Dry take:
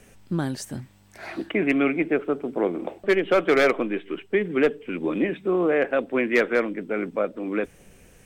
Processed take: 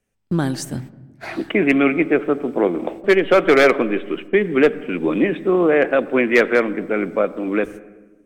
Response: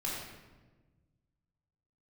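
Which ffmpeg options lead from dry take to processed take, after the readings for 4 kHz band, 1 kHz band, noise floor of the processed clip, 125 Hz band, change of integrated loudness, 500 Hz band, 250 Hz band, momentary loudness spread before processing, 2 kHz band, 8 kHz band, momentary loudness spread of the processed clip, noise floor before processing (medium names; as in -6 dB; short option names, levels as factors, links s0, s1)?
+6.0 dB, +6.0 dB, -52 dBFS, +6.0 dB, +6.0 dB, +6.0 dB, +6.0 dB, 11 LU, +6.0 dB, no reading, 10 LU, -54 dBFS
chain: -filter_complex "[0:a]agate=range=0.0355:threshold=0.01:ratio=16:detection=peak,asplit=2[s0][s1];[1:a]atrim=start_sample=2205,lowpass=2100,adelay=86[s2];[s1][s2]afir=irnorm=-1:irlink=0,volume=0.0944[s3];[s0][s3]amix=inputs=2:normalize=0,volume=2"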